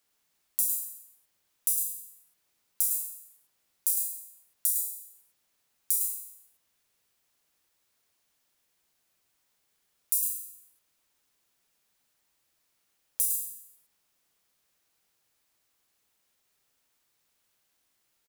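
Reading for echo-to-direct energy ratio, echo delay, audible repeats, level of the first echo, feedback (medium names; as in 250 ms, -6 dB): -5.0 dB, 106 ms, 1, -5.0 dB, no regular repeats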